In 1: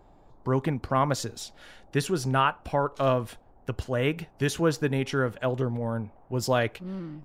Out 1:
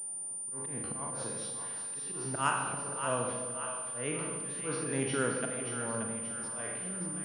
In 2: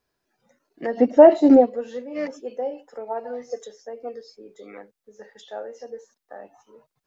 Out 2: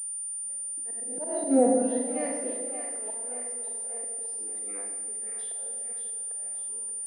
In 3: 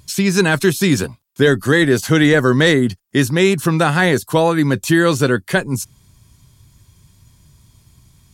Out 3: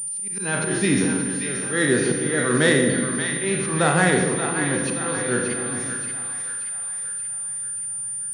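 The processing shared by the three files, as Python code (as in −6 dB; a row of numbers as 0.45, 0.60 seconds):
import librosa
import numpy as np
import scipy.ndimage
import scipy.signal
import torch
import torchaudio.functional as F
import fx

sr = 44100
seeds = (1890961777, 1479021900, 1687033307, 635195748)

y = fx.spec_trails(x, sr, decay_s=0.61)
y = fx.auto_swell(y, sr, attack_ms=527.0)
y = fx.comb_fb(y, sr, f0_hz=240.0, decay_s=0.63, harmonics='all', damping=0.0, mix_pct=40)
y = fx.auto_swell(y, sr, attack_ms=108.0)
y = scipy.signal.sosfilt(scipy.signal.butter(4, 120.0, 'highpass', fs=sr, output='sos'), y)
y = fx.echo_split(y, sr, split_hz=710.0, low_ms=149, high_ms=579, feedback_pct=52, wet_db=-7.0)
y = fx.rev_schroeder(y, sr, rt60_s=1.3, comb_ms=33, drr_db=6.0)
y = fx.pwm(y, sr, carrier_hz=9200.0)
y = y * 10.0 ** (-2.5 / 20.0)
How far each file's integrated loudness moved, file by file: −6.0, −10.5, −6.5 LU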